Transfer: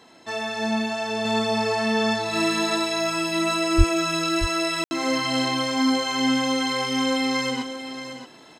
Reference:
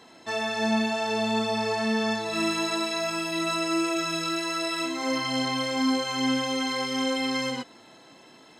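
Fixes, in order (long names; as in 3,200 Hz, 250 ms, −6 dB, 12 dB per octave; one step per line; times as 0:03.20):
0:03.77–0:03.89: high-pass filter 140 Hz 24 dB per octave
ambience match 0:04.84–0:04.91
echo removal 628 ms −10.5 dB
level 0 dB, from 0:01.25 −3.5 dB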